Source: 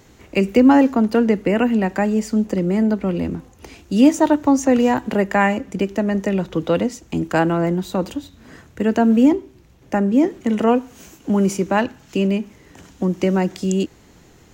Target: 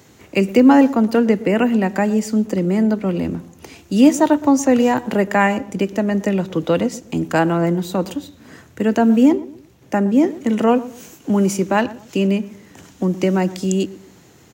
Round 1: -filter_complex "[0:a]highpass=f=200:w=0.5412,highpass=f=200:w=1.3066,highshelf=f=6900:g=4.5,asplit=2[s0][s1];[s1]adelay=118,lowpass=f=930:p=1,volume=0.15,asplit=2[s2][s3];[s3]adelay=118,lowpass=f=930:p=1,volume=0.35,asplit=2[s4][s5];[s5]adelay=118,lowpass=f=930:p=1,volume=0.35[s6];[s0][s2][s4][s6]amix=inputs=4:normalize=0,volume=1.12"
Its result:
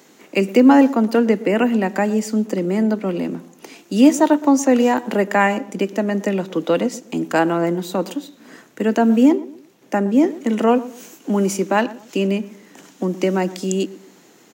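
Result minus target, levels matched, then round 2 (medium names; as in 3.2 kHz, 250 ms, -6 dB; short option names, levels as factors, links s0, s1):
125 Hz band -3.5 dB
-filter_complex "[0:a]highpass=f=81:w=0.5412,highpass=f=81:w=1.3066,highshelf=f=6900:g=4.5,asplit=2[s0][s1];[s1]adelay=118,lowpass=f=930:p=1,volume=0.15,asplit=2[s2][s3];[s3]adelay=118,lowpass=f=930:p=1,volume=0.35,asplit=2[s4][s5];[s5]adelay=118,lowpass=f=930:p=1,volume=0.35[s6];[s0][s2][s4][s6]amix=inputs=4:normalize=0,volume=1.12"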